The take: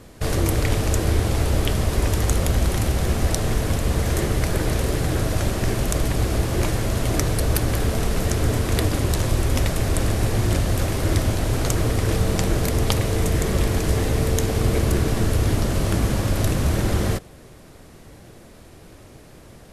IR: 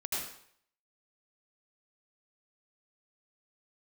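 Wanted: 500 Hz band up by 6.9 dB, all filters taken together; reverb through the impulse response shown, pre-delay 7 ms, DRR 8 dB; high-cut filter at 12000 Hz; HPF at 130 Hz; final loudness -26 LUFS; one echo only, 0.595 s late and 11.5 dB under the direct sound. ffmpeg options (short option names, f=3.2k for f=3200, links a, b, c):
-filter_complex "[0:a]highpass=130,lowpass=12k,equalizer=f=500:t=o:g=8.5,aecho=1:1:595:0.266,asplit=2[a][b];[1:a]atrim=start_sample=2205,adelay=7[c];[b][c]afir=irnorm=-1:irlink=0,volume=-12dB[d];[a][d]amix=inputs=2:normalize=0,volume=-5dB"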